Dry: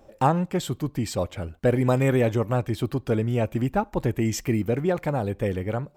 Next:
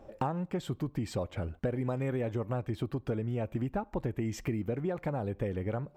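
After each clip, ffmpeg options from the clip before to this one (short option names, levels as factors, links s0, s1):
-af "highshelf=f=3700:g=-11.5,acompressor=threshold=0.0282:ratio=6,volume=1.12"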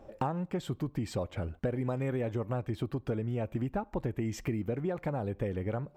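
-af anull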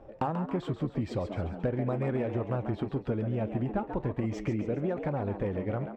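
-filter_complex "[0:a]flanger=delay=2:depth=8.5:regen=-78:speed=0.39:shape=triangular,adynamicsmooth=sensitivity=8:basefreq=3600,asplit=6[s0][s1][s2][s3][s4][s5];[s1]adelay=137,afreqshift=94,volume=0.355[s6];[s2]adelay=274,afreqshift=188,volume=0.166[s7];[s3]adelay=411,afreqshift=282,volume=0.0785[s8];[s4]adelay=548,afreqshift=376,volume=0.0367[s9];[s5]adelay=685,afreqshift=470,volume=0.0174[s10];[s0][s6][s7][s8][s9][s10]amix=inputs=6:normalize=0,volume=2"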